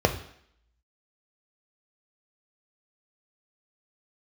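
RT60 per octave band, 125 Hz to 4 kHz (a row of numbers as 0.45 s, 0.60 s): 0.45 s, 0.65 s, 0.65 s, 0.70 s, 0.70 s, 0.70 s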